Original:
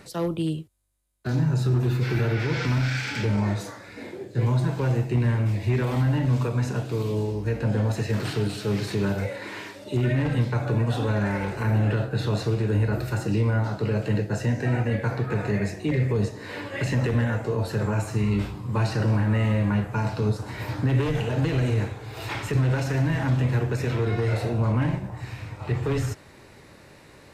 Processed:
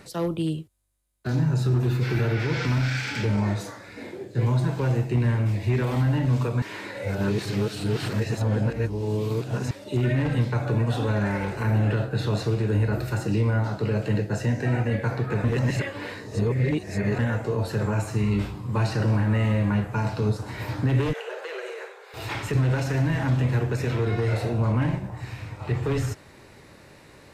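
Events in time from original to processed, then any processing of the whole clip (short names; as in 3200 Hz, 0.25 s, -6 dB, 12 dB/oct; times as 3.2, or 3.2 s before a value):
6.62–9.71 reverse
15.44–17.19 reverse
21.13–22.14 rippled Chebyshev high-pass 370 Hz, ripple 6 dB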